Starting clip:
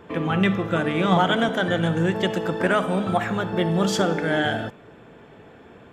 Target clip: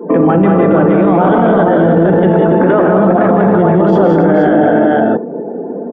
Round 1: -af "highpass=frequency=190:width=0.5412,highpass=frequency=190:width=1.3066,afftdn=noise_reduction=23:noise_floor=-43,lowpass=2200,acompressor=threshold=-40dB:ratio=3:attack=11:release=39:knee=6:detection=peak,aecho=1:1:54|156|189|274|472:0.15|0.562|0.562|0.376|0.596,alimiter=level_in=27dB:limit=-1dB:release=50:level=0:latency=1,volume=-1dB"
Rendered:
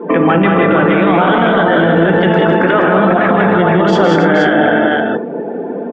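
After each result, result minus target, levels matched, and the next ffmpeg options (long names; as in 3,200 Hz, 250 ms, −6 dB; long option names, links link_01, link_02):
2,000 Hz band +9.0 dB; downward compressor: peak gain reduction +9 dB
-af "highpass=frequency=190:width=0.5412,highpass=frequency=190:width=1.3066,afftdn=noise_reduction=23:noise_floor=-43,lowpass=790,acompressor=threshold=-40dB:ratio=3:attack=11:release=39:knee=6:detection=peak,aecho=1:1:54|156|189|274|472:0.15|0.562|0.562|0.376|0.596,alimiter=level_in=27dB:limit=-1dB:release=50:level=0:latency=1,volume=-1dB"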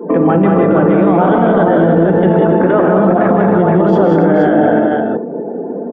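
downward compressor: peak gain reduction +8 dB
-af "highpass=frequency=190:width=0.5412,highpass=frequency=190:width=1.3066,afftdn=noise_reduction=23:noise_floor=-43,lowpass=790,acompressor=threshold=-28dB:ratio=3:attack=11:release=39:knee=6:detection=peak,aecho=1:1:54|156|189|274|472:0.15|0.562|0.562|0.376|0.596,alimiter=level_in=27dB:limit=-1dB:release=50:level=0:latency=1,volume=-1dB"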